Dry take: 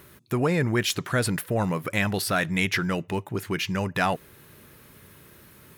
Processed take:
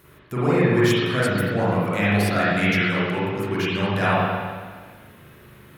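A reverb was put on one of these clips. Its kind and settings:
spring reverb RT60 1.6 s, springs 39/53 ms, chirp 75 ms, DRR −9.5 dB
level −5 dB

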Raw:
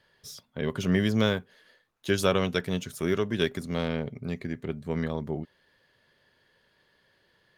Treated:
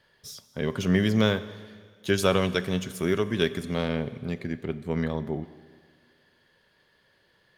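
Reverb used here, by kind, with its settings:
four-comb reverb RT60 1.8 s, combs from 29 ms, DRR 14 dB
level +1.5 dB

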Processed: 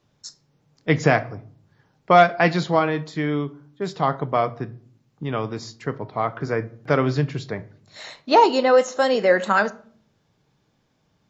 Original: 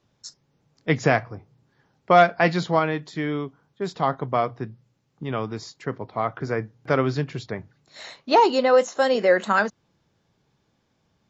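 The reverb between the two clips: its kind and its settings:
rectangular room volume 650 cubic metres, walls furnished, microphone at 0.46 metres
level +1.5 dB

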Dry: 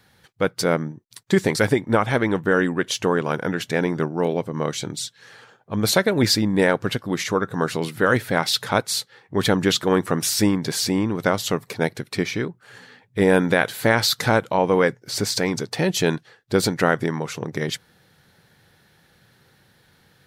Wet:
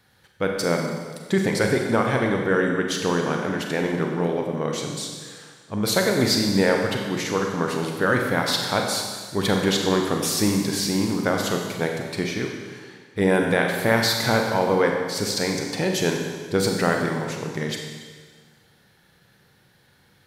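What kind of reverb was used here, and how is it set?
four-comb reverb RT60 1.6 s, combs from 31 ms, DRR 1.5 dB
level −3.5 dB

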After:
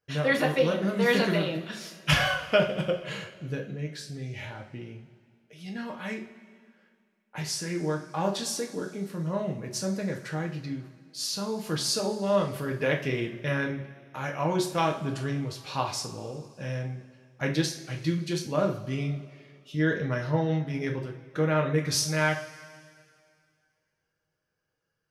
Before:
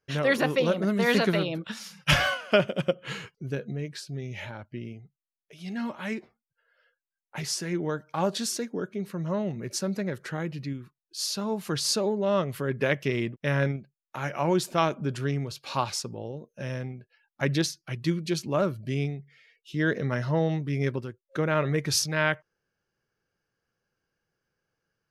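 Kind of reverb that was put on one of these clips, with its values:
coupled-rooms reverb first 0.37 s, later 2.3 s, from −18 dB, DRR 0.5 dB
level −3.5 dB

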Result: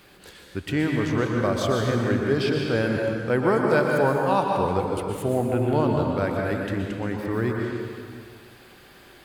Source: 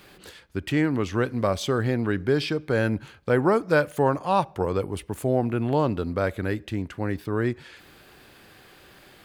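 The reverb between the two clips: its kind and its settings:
dense smooth reverb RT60 2.1 s, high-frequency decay 0.75×, pre-delay 105 ms, DRR 0 dB
level −1.5 dB

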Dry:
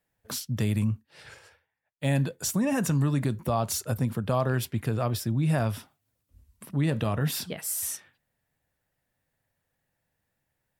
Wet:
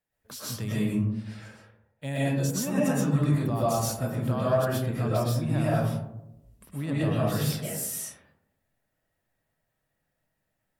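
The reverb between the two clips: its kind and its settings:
comb and all-pass reverb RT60 0.9 s, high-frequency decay 0.3×, pre-delay 85 ms, DRR −8 dB
level −8 dB

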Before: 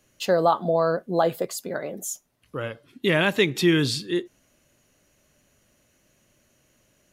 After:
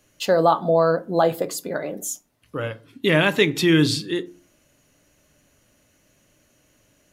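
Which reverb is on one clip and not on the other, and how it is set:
feedback delay network reverb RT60 0.35 s, low-frequency decay 1.5×, high-frequency decay 0.55×, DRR 11.5 dB
level +2.5 dB

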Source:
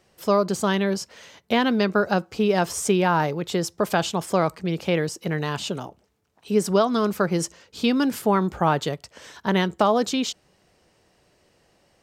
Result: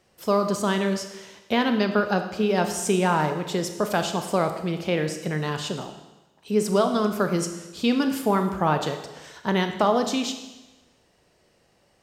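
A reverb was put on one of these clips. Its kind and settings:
four-comb reverb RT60 1.1 s, combs from 26 ms, DRR 6.5 dB
level −2 dB

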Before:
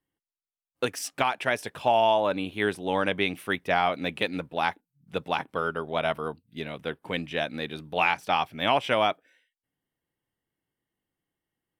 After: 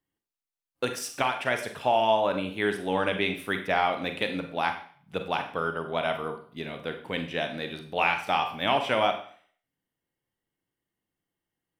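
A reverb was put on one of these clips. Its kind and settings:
four-comb reverb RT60 0.49 s, combs from 32 ms, DRR 6 dB
level −1.5 dB

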